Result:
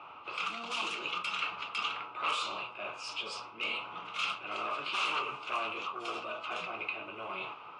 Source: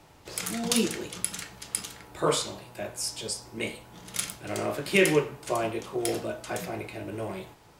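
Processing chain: low-pass opened by the level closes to 1800 Hz, open at -22 dBFS; sine folder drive 17 dB, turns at -8 dBFS; reverse; compressor 6:1, threshold -22 dBFS, peak gain reduction 11 dB; reverse; double band-pass 1800 Hz, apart 1.1 oct; AAC 32 kbps 22050 Hz

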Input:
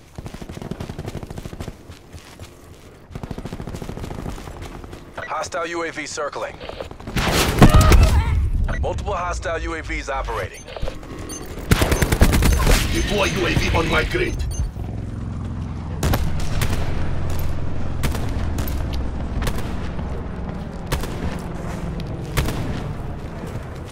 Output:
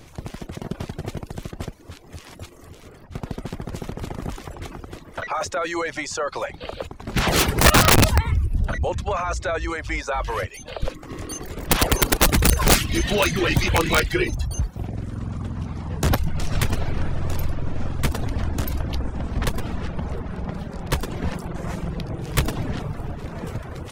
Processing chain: reverb removal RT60 0.56 s; wrapped overs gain 8.5 dB

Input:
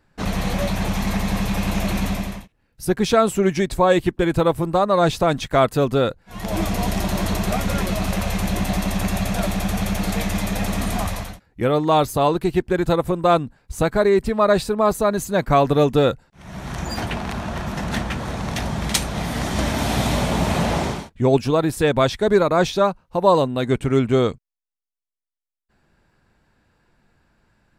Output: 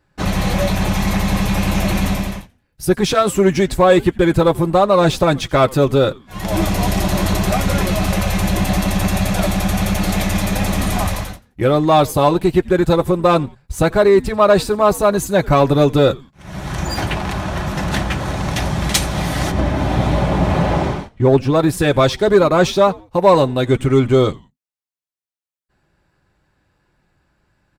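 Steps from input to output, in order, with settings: 19.5–21.54 LPF 1000 Hz -> 2400 Hz 6 dB/oct; sample leveller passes 1; notch comb 230 Hz; frequency-shifting echo 87 ms, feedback 35%, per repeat -140 Hz, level -23 dB; gain +2.5 dB

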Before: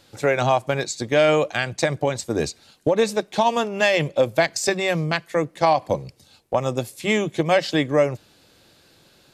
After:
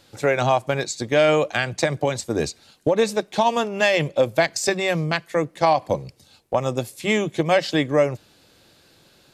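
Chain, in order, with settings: 1.53–2.22 three-band squash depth 40%

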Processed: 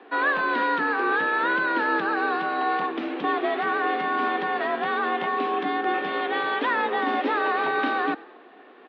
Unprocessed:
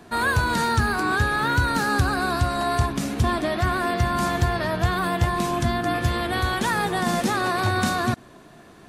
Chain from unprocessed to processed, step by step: mistuned SSB +53 Hz 230–3300 Hz; frequency-shifting echo 98 ms, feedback 44%, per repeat +42 Hz, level -20.5 dB

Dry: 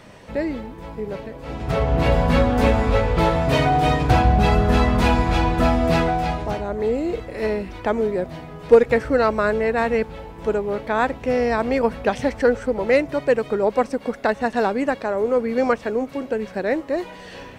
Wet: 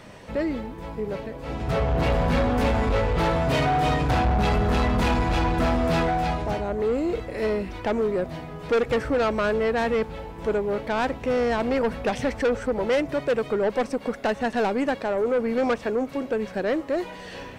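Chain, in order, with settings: soft clip -17.5 dBFS, distortion -10 dB

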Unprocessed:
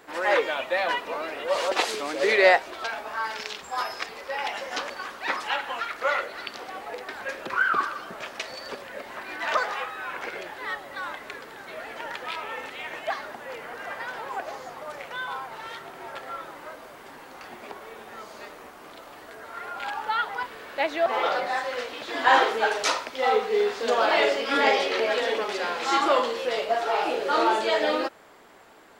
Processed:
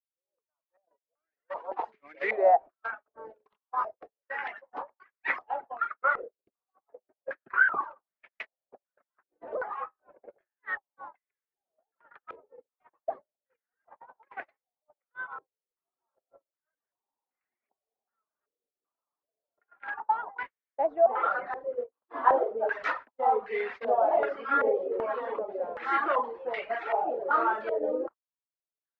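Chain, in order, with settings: opening faded in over 3.05 s; gate -31 dBFS, range -45 dB; reverb removal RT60 0.63 s; stepped low-pass 2.6 Hz 480–2100 Hz; gain -8.5 dB

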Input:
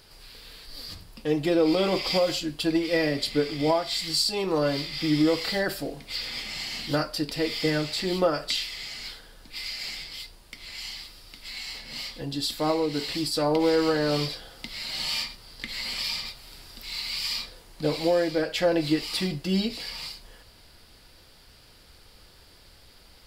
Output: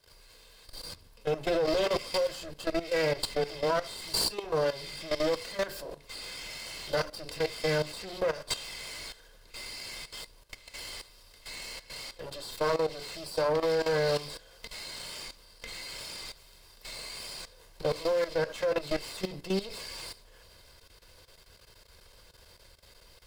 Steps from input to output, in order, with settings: minimum comb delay 1.9 ms; notches 60/120/180/240/300/360/420 Hz; level quantiser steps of 14 dB; bell 560 Hz +2 dB 2.4 oct

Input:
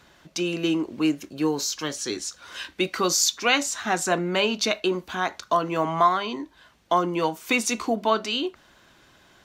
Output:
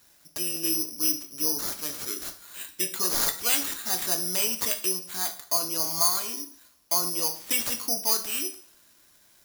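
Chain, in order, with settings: careless resampling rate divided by 8×, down none, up zero stuff; two-slope reverb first 0.5 s, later 1.7 s, from -26 dB, DRR 6 dB; gain -13 dB

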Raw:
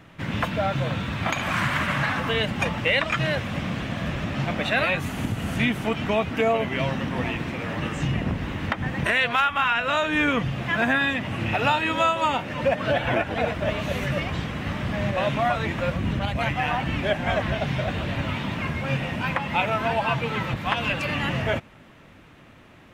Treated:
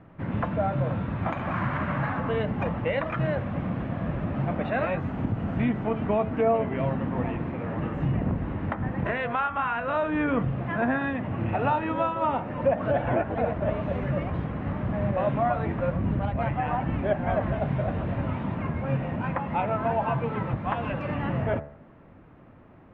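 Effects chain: LPF 1100 Hz 12 dB/oct; de-hum 72.72 Hz, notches 28

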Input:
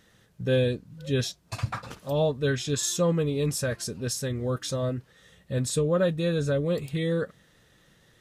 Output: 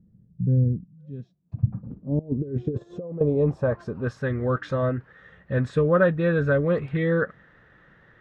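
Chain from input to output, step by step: 0.85–1.54 weighting filter ITU-R 468; 2.19–3.21 negative-ratio compressor -31 dBFS, ratio -0.5; low-pass sweep 180 Hz -> 1600 Hz, 1.62–4.34; gain +3.5 dB

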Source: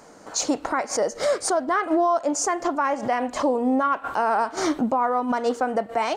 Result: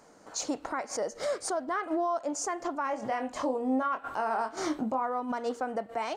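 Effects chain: 2.84–5.02 doubler 23 ms -7 dB; gain -9 dB

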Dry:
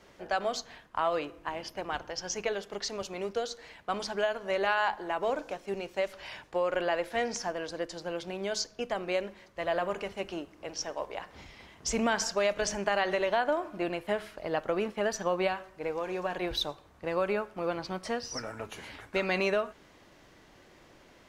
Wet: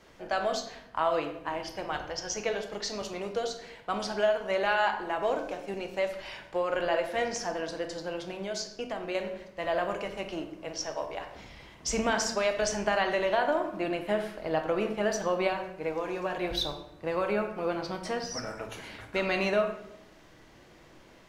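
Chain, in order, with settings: 8.13–9.15 compressor, threshold -32 dBFS, peak gain reduction 5.5 dB; reverb RT60 0.80 s, pre-delay 6 ms, DRR 5 dB

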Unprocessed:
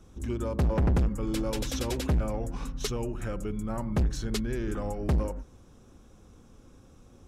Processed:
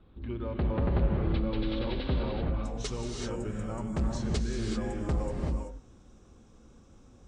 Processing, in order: steep low-pass 4300 Hz 72 dB/oct, from 2.63 s 9100 Hz; non-linear reverb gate 0.41 s rising, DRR 0.5 dB; gain -4.5 dB

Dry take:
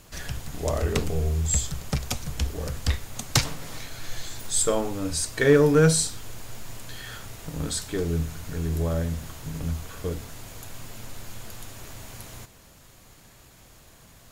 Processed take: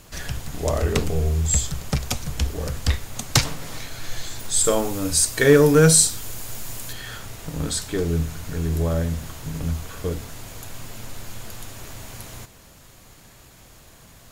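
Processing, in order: 4.64–6.93 high shelf 6700 Hz +10.5 dB; gain +3.5 dB

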